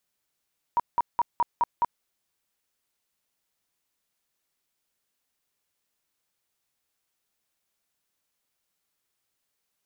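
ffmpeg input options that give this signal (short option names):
-f lavfi -i "aevalsrc='0.119*sin(2*PI*952*mod(t,0.21))*lt(mod(t,0.21),26/952)':d=1.26:s=44100"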